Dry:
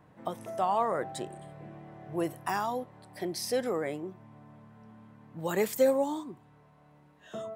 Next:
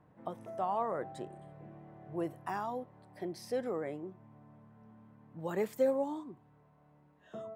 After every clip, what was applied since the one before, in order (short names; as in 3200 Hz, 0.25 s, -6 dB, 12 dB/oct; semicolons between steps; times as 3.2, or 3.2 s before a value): high shelf 2500 Hz -12 dB; gain -4.5 dB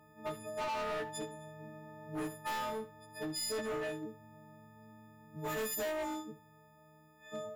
frequency quantiser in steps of 6 st; overloaded stage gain 35 dB; flutter echo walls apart 11.4 m, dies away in 0.27 s; gain +1 dB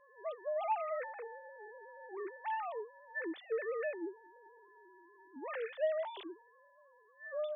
sine-wave speech